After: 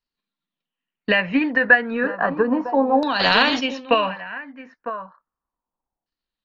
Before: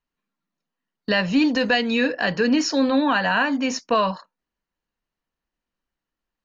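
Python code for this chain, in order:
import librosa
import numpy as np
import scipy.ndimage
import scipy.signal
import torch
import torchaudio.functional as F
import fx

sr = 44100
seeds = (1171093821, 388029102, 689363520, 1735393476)

y = fx.transient(x, sr, attack_db=7, sustain_db=0)
y = y + 10.0 ** (-12.5 / 20.0) * np.pad(y, (int(953 * sr / 1000.0), 0))[:len(y)]
y = fx.filter_lfo_lowpass(y, sr, shape='saw_down', hz=0.33, low_hz=760.0, high_hz=4700.0, q=4.6)
y = fx.dynamic_eq(y, sr, hz=650.0, q=0.72, threshold_db=-28.0, ratio=4.0, max_db=4)
y = fx.spectral_comp(y, sr, ratio=2.0, at=(3.19, 3.59), fade=0.02)
y = F.gain(torch.from_numpy(y), -6.0).numpy()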